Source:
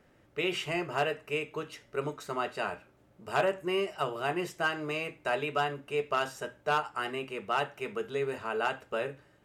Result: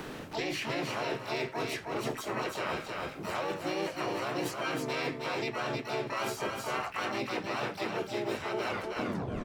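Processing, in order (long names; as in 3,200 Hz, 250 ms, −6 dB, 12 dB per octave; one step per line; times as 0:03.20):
turntable brake at the end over 0.77 s
brickwall limiter −25.5 dBFS, peak gain reduction 7.5 dB
reversed playback
downward compressor 16 to 1, threshold −42 dBFS, peak gain reduction 13.5 dB
reversed playback
pitch-shifted copies added −3 semitones 0 dB, +7 semitones −3 dB, +12 semitones −6 dB
on a send: single-tap delay 314 ms −5.5 dB
on the sum: multiband upward and downward compressor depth 70%
level +6.5 dB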